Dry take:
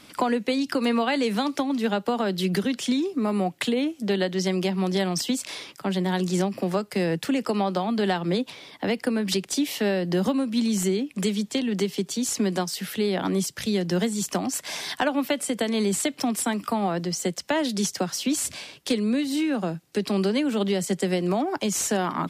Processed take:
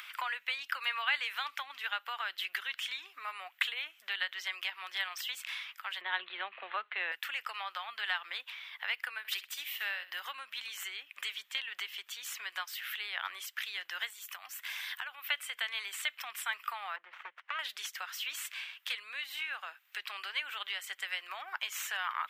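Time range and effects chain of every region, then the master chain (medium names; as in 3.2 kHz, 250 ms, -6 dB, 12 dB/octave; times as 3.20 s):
6.01–7.12 s: steep low-pass 4.1 kHz 96 dB/octave + peaking EQ 280 Hz +13.5 dB 2.5 oct
9.18–10.20 s: treble shelf 11 kHz +9.5 dB + flutter echo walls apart 11 m, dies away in 0.33 s + upward expansion, over -38 dBFS
14.10–15.25 s: treble shelf 9.1 kHz +10.5 dB + compression 4:1, threshold -31 dBFS
16.96–17.59 s: self-modulated delay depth 0.43 ms + Bessel low-pass 1.1 kHz + upward compressor, threshold -49 dBFS
whole clip: high-pass 1.3 kHz 24 dB/octave; high-order bell 6.9 kHz -15.5 dB; upward compressor, threshold -41 dBFS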